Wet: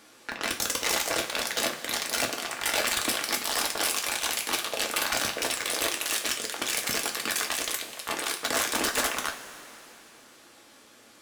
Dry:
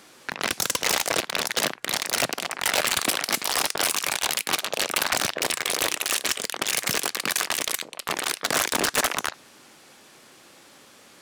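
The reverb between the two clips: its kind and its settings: two-slope reverb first 0.27 s, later 3.2 s, from -18 dB, DRR 1.5 dB; trim -5.5 dB

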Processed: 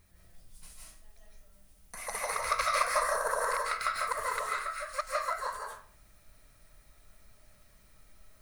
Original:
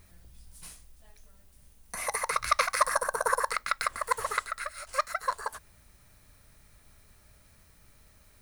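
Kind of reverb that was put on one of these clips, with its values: algorithmic reverb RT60 0.47 s, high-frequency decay 0.65×, pre-delay 120 ms, DRR -4 dB; trim -7 dB

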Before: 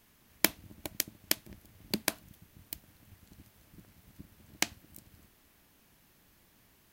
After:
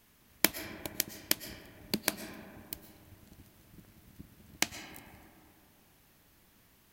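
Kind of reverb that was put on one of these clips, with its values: algorithmic reverb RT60 2.9 s, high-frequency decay 0.3×, pre-delay 80 ms, DRR 9.5 dB

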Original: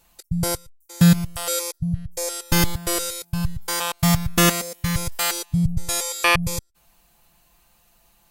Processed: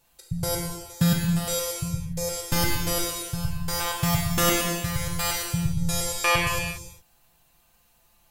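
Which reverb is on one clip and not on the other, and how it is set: gated-style reverb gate 440 ms falling, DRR -1.5 dB; trim -6.5 dB

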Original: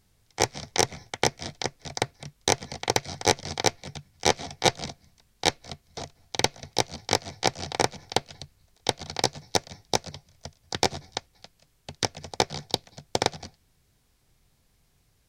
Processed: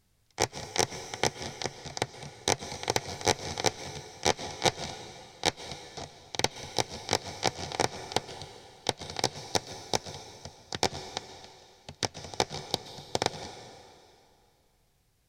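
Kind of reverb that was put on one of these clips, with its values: plate-style reverb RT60 2.5 s, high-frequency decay 0.95×, pre-delay 110 ms, DRR 11.5 dB; trim -4 dB

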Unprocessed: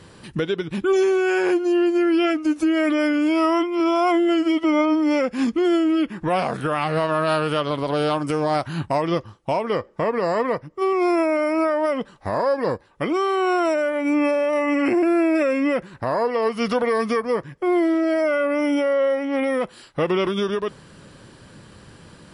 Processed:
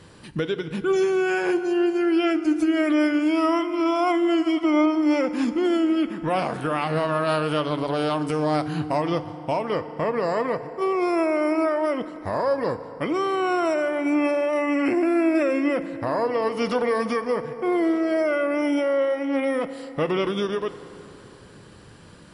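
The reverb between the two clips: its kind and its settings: FDN reverb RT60 3.8 s, high-frequency decay 0.55×, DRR 11.5 dB; trim -2.5 dB

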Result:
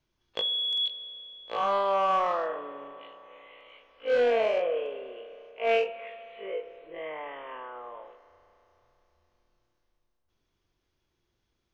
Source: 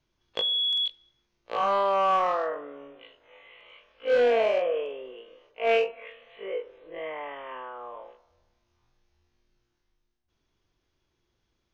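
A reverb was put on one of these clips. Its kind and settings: spring tank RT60 3.6 s, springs 32 ms, chirp 45 ms, DRR 14 dB; trim -2 dB

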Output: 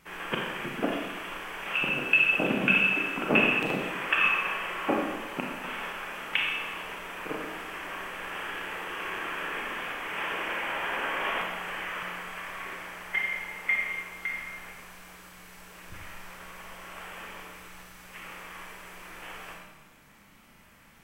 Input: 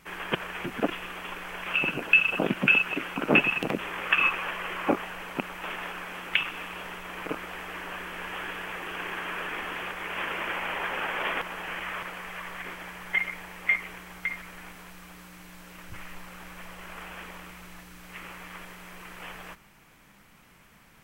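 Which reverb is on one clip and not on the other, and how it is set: Schroeder reverb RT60 1.1 s, combs from 28 ms, DRR -1 dB; trim -3.5 dB

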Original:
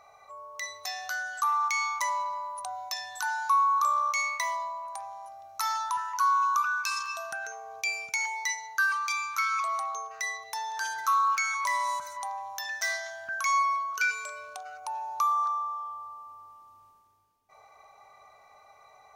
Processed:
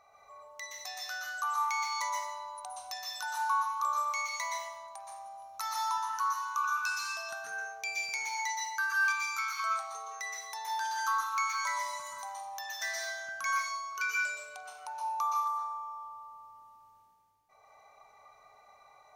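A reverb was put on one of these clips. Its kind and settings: plate-style reverb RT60 0.64 s, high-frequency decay 0.9×, pre-delay 110 ms, DRR -2 dB; trim -7 dB

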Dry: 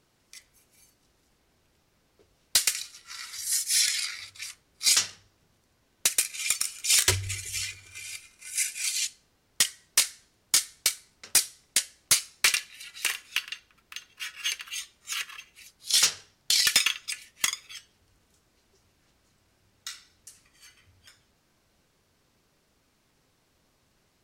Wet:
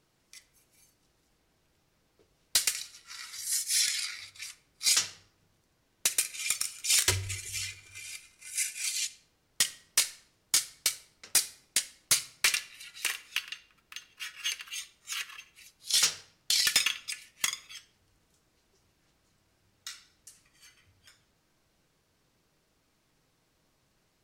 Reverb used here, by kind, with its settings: simulated room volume 2300 m³, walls furnished, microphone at 0.58 m; trim -3.5 dB

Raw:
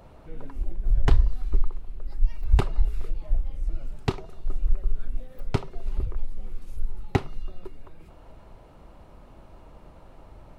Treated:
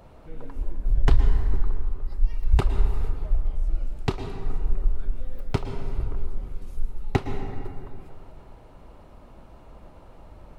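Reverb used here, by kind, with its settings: plate-style reverb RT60 2.5 s, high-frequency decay 0.4×, pre-delay 100 ms, DRR 6 dB

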